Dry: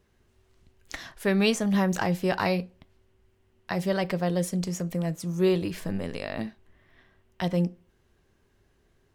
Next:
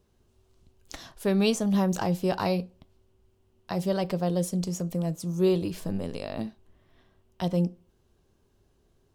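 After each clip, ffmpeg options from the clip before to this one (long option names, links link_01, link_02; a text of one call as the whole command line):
ffmpeg -i in.wav -af "equalizer=frequency=1900:width_type=o:width=0.87:gain=-10.5" out.wav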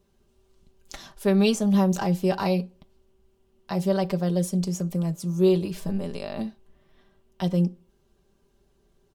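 ffmpeg -i in.wav -af "aecho=1:1:5.1:0.58" out.wav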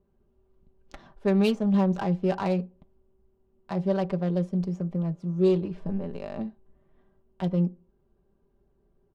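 ffmpeg -i in.wav -af "adynamicsmooth=sensitivity=2:basefreq=1400,volume=-2dB" out.wav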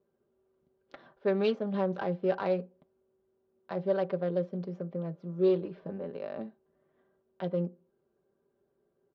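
ffmpeg -i in.wav -af "highpass=180,equalizer=frequency=200:width_type=q:width=4:gain=-6,equalizer=frequency=510:width_type=q:width=4:gain=7,equalizer=frequency=890:width_type=q:width=4:gain=-3,equalizer=frequency=1500:width_type=q:width=4:gain=4,equalizer=frequency=2700:width_type=q:width=4:gain=-3,lowpass=frequency=4300:width=0.5412,lowpass=frequency=4300:width=1.3066,volume=-3.5dB" out.wav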